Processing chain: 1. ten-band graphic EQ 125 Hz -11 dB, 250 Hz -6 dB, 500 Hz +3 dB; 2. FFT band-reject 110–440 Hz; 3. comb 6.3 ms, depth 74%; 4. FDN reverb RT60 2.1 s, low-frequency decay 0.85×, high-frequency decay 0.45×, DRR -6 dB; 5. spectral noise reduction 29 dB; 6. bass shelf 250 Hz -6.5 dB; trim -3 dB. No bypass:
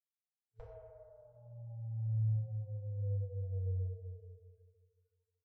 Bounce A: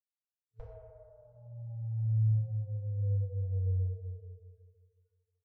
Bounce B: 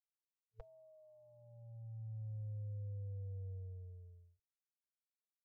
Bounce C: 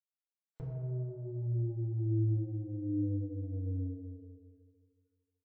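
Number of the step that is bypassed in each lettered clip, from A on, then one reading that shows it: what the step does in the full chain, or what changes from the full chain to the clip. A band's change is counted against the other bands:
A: 6, momentary loudness spread change +1 LU; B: 4, loudness change -8.5 LU; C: 2, momentary loudness spread change -7 LU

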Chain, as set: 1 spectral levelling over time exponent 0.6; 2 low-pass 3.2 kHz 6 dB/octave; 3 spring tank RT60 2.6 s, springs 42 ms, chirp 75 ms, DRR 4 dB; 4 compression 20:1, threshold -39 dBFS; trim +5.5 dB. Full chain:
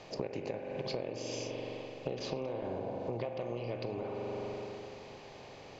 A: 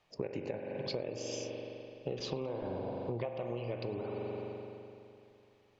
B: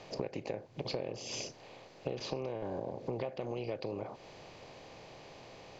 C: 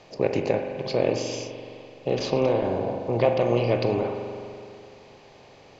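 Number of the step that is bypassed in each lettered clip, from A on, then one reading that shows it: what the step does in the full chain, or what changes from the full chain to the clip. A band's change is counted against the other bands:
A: 1, 1 kHz band -2.5 dB; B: 3, crest factor change +1.5 dB; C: 4, mean gain reduction 7.5 dB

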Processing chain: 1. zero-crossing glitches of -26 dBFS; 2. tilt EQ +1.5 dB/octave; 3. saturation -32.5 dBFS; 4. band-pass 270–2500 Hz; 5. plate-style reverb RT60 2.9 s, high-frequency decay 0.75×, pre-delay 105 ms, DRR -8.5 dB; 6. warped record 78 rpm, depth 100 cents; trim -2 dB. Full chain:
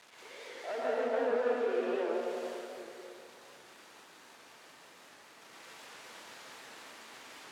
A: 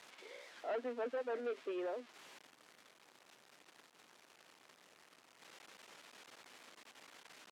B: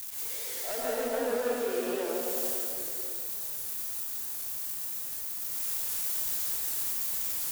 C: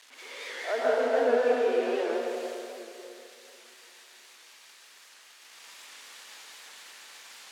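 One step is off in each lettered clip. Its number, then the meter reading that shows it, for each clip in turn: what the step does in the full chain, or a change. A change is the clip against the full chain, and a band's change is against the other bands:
5, loudness change -10.0 LU; 4, 8 kHz band +20.5 dB; 3, distortion -10 dB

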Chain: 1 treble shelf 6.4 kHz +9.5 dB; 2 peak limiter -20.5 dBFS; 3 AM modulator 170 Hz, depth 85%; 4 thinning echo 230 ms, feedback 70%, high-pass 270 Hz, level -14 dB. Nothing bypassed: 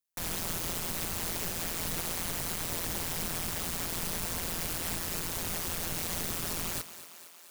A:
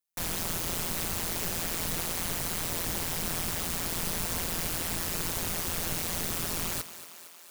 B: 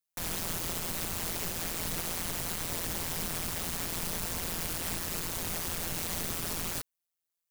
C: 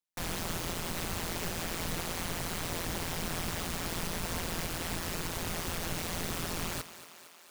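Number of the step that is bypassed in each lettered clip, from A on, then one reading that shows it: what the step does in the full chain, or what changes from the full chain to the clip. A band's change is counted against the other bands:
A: 2, mean gain reduction 2.5 dB; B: 4, echo-to-direct -11.5 dB to none; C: 1, 8 kHz band -6.0 dB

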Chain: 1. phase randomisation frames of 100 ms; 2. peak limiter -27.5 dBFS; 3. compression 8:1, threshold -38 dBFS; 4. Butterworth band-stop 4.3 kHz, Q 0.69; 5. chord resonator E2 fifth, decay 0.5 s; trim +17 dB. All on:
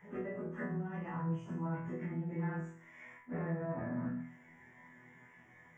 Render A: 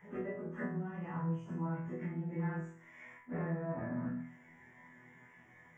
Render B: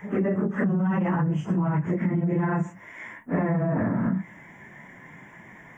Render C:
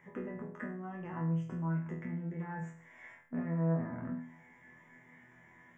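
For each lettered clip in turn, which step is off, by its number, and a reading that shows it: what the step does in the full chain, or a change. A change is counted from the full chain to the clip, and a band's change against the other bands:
2, mean gain reduction 2.0 dB; 5, 250 Hz band +1.5 dB; 1, 125 Hz band +3.5 dB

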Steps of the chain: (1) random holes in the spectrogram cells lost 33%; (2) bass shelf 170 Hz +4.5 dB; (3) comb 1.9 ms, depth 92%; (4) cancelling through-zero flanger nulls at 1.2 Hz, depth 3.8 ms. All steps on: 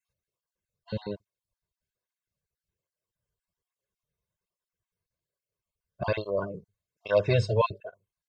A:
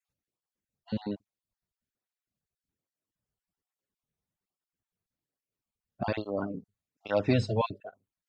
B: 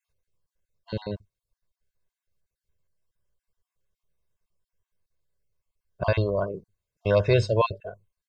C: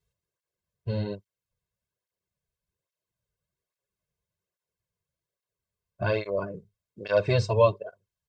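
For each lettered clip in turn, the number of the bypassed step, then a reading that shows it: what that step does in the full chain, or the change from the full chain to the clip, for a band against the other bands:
3, 250 Hz band +9.0 dB; 4, momentary loudness spread change -2 LU; 1, crest factor change +2.0 dB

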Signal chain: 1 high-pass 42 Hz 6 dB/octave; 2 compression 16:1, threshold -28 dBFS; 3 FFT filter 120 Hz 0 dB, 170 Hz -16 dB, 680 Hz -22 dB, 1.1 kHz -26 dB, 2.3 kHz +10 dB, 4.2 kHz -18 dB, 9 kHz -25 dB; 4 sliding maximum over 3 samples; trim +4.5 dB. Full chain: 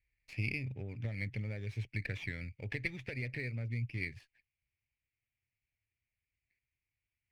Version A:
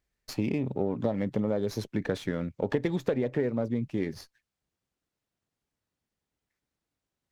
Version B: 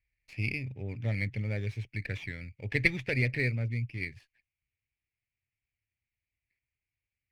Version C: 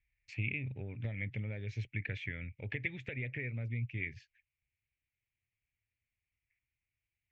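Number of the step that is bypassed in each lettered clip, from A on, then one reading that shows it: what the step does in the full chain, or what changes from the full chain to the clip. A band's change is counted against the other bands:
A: 3, 2 kHz band -19.0 dB; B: 2, mean gain reduction 4.5 dB; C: 4, distortion -17 dB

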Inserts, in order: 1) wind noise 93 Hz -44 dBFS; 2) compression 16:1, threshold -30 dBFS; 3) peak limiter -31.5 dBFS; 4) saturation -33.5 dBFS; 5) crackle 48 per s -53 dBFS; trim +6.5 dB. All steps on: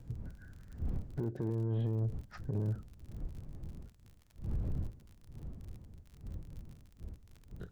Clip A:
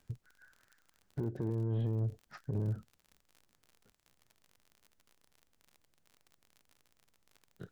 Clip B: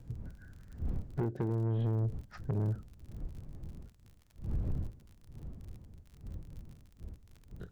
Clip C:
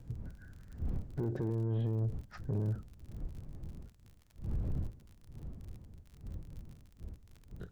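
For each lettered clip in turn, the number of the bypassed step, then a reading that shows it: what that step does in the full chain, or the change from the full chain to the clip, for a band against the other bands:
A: 1, crest factor change +2.5 dB; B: 3, momentary loudness spread change +2 LU; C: 2, mean gain reduction 2.0 dB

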